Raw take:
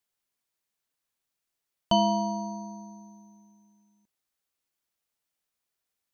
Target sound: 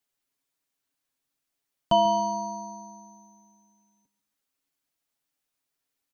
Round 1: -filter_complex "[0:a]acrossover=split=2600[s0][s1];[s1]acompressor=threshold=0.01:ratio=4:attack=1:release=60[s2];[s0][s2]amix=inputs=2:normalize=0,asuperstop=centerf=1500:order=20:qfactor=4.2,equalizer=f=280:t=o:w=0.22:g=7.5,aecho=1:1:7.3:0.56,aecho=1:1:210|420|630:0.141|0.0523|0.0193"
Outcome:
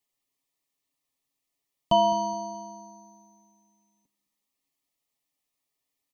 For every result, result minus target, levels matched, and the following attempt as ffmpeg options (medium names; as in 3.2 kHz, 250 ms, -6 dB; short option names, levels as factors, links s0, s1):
echo 69 ms late; 2 kHz band -4.0 dB
-filter_complex "[0:a]acrossover=split=2600[s0][s1];[s1]acompressor=threshold=0.01:ratio=4:attack=1:release=60[s2];[s0][s2]amix=inputs=2:normalize=0,asuperstop=centerf=1500:order=20:qfactor=4.2,equalizer=f=280:t=o:w=0.22:g=7.5,aecho=1:1:7.3:0.56,aecho=1:1:141|282|423:0.141|0.0523|0.0193"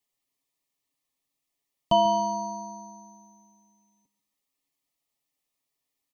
2 kHz band -4.0 dB
-filter_complex "[0:a]acrossover=split=2600[s0][s1];[s1]acompressor=threshold=0.01:ratio=4:attack=1:release=60[s2];[s0][s2]amix=inputs=2:normalize=0,equalizer=f=280:t=o:w=0.22:g=7.5,aecho=1:1:7.3:0.56,aecho=1:1:141|282|423:0.141|0.0523|0.0193"